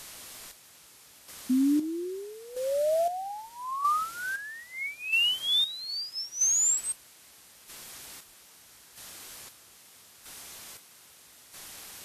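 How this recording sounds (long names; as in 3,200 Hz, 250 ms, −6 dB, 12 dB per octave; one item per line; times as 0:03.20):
phaser sweep stages 8, 0.73 Hz, lowest notch 560–2,900 Hz
a quantiser's noise floor 8 bits, dither triangular
chopped level 0.78 Hz, depth 65%, duty 40%
Ogg Vorbis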